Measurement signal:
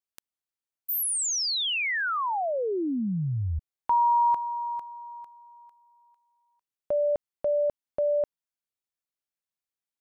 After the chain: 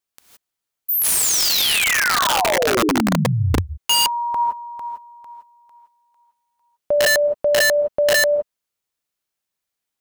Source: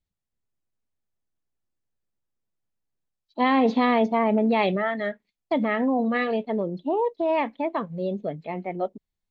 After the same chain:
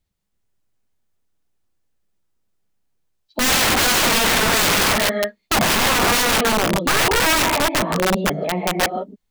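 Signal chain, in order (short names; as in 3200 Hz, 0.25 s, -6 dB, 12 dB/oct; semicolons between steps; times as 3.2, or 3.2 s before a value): non-linear reverb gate 0.19 s rising, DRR 3.5 dB; wrapped overs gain 20.5 dB; gain +8.5 dB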